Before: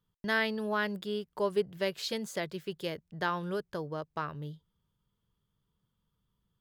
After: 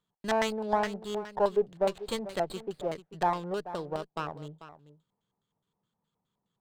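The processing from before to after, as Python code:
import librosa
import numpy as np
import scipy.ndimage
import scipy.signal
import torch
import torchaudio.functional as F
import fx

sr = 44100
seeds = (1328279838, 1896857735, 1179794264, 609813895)

y = scipy.signal.sosfilt(scipy.signal.butter(2, 180.0, 'highpass', fs=sr, output='sos'), x)
y = fx.high_shelf(y, sr, hz=5600.0, db=-11.5)
y = y + 10.0 ** (-14.5 / 20.0) * np.pad(y, (int(441 * sr / 1000.0), 0))[:len(y)]
y = fx.filter_lfo_lowpass(y, sr, shape='square', hz=4.8, low_hz=790.0, high_hz=4200.0, q=5.5)
y = fx.running_max(y, sr, window=5)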